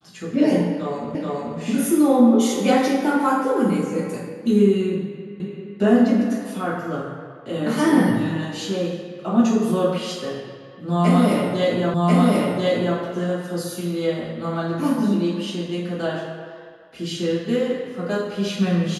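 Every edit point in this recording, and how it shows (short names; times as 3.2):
1.15 repeat of the last 0.43 s
5.4 repeat of the last 0.39 s
11.94 repeat of the last 1.04 s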